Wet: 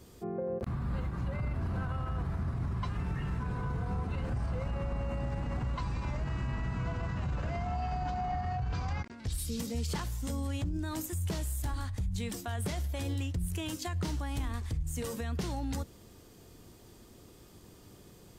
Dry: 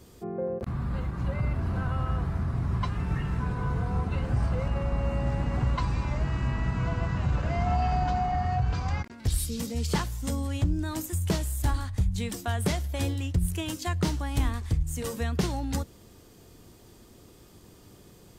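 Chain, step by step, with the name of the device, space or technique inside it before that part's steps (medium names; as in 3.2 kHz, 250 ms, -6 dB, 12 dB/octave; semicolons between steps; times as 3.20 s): clipper into limiter (hard clipper -17 dBFS, distortion -49 dB; peak limiter -24.5 dBFS, peak gain reduction 7.5 dB); 8.17–9.33 s: low-pass 8.1 kHz 12 dB/octave; trim -2 dB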